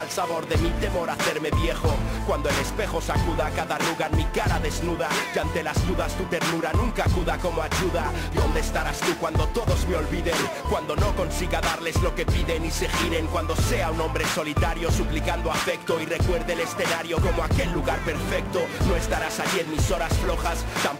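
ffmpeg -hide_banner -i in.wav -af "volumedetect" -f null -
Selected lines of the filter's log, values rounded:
mean_volume: -24.2 dB
max_volume: -12.9 dB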